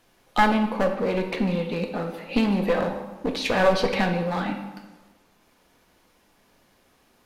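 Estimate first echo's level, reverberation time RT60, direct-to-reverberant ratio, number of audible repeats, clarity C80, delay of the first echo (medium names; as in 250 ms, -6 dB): no echo, 1.2 s, 3.5 dB, no echo, 9.0 dB, no echo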